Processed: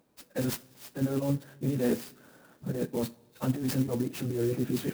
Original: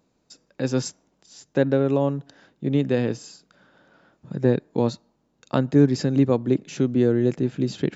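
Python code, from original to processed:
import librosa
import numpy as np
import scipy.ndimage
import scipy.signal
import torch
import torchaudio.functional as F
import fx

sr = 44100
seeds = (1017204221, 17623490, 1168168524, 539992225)

p1 = fx.highpass(x, sr, hz=79.0, slope=6)
p2 = fx.over_compress(p1, sr, threshold_db=-25.0, ratio=-1.0)
p3 = fx.stretch_vocoder_free(p2, sr, factor=0.62)
p4 = p3 + fx.echo_wet_highpass(p3, sr, ms=297, feedback_pct=49, hz=3700.0, wet_db=-22, dry=0)
p5 = fx.rev_double_slope(p4, sr, seeds[0], early_s=0.28, late_s=1.7, knee_db=-18, drr_db=12.5)
p6 = fx.clock_jitter(p5, sr, seeds[1], jitter_ms=0.049)
y = F.gain(torch.from_numpy(p6), -1.0).numpy()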